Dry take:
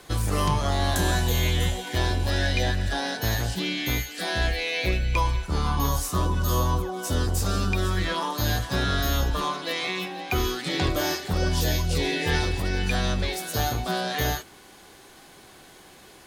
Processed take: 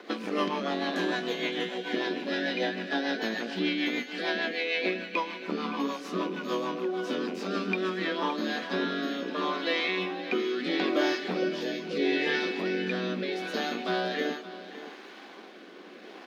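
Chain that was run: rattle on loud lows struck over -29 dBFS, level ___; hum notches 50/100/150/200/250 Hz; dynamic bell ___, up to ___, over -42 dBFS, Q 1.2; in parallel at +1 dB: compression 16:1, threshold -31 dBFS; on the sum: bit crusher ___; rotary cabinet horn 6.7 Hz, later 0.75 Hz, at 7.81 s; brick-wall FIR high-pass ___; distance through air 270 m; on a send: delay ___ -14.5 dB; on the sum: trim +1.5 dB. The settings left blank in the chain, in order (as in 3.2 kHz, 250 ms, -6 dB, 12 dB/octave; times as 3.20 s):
-32 dBFS, 880 Hz, -6 dB, 7-bit, 190 Hz, 567 ms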